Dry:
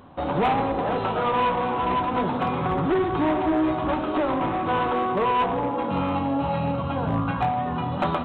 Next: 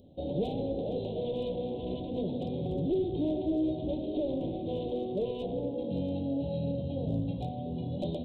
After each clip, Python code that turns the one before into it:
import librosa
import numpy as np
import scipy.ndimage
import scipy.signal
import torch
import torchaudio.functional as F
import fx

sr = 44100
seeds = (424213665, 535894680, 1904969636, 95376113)

y = scipy.signal.sosfilt(scipy.signal.cheby1(3, 1.0, [570.0, 3600.0], 'bandstop', fs=sr, output='sos'), x)
y = F.gain(torch.from_numpy(y), -5.5).numpy()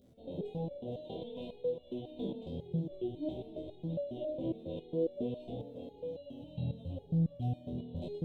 y = fx.dmg_crackle(x, sr, seeds[0], per_s=39.0, level_db=-53.0)
y = fx.room_flutter(y, sr, wall_m=4.2, rt60_s=0.44)
y = fx.resonator_held(y, sr, hz=7.3, low_hz=65.0, high_hz=570.0)
y = F.gain(torch.from_numpy(y), 1.0).numpy()